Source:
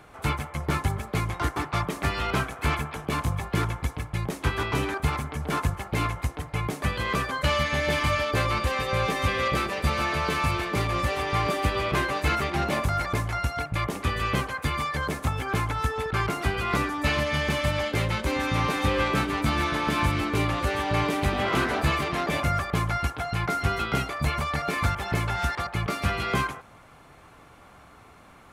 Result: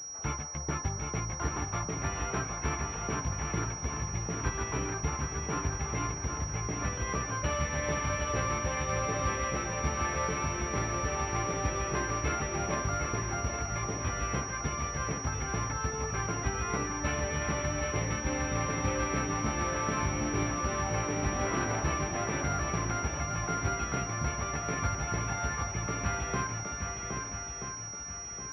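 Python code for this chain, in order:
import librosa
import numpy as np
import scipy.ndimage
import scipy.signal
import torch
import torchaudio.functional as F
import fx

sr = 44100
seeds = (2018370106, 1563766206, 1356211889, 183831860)

y = fx.echo_swing(x, sr, ms=1280, ratio=1.5, feedback_pct=37, wet_db=-5.0)
y = fx.pwm(y, sr, carrier_hz=5700.0)
y = y * librosa.db_to_amplitude(-7.5)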